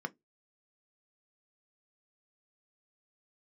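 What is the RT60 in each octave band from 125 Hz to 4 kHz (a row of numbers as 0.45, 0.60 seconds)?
0.20, 0.20, 0.20, 0.15, 0.10, 0.10 seconds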